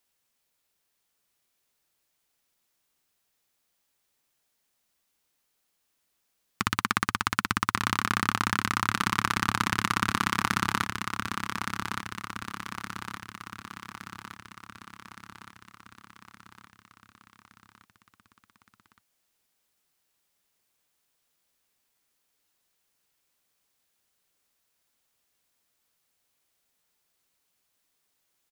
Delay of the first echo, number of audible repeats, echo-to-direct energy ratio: 1,167 ms, 6, −5.0 dB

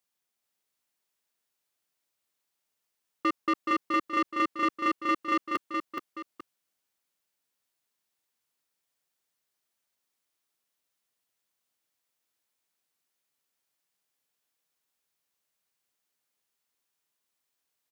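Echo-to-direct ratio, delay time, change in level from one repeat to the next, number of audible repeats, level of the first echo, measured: −4.0 dB, 424 ms, −8.5 dB, 2, −4.5 dB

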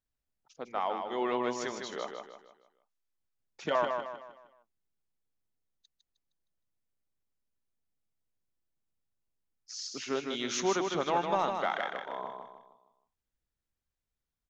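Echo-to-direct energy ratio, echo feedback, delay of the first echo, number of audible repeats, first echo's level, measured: −4.5 dB, 40%, 155 ms, 4, −5.5 dB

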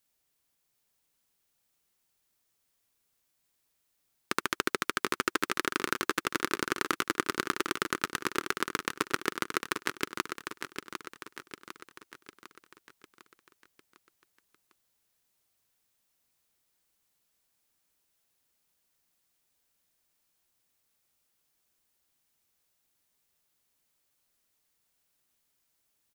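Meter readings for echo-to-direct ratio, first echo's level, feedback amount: −6.0 dB, −7.5 dB, 51%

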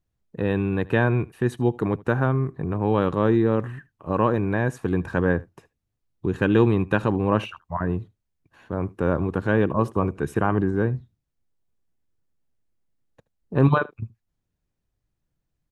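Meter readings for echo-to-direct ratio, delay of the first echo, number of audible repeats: −22.5 dB, 76 ms, 1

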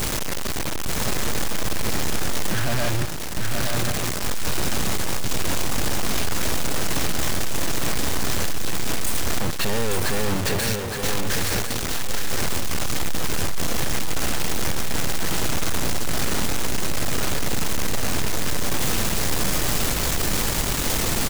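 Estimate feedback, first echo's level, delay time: repeats not evenly spaced, −4.5 dB, 866 ms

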